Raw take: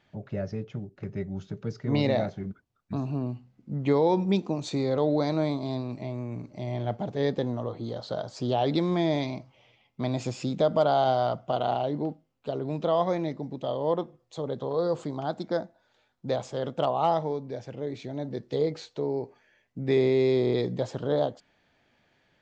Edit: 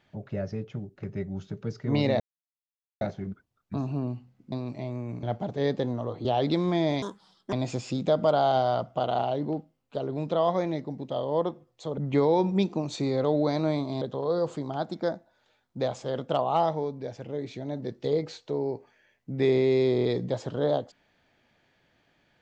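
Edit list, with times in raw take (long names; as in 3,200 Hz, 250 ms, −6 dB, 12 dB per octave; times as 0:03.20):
0:02.20: splice in silence 0.81 s
0:03.71–0:05.75: move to 0:14.50
0:06.46–0:06.82: remove
0:07.84–0:08.49: remove
0:09.26–0:10.05: play speed 156%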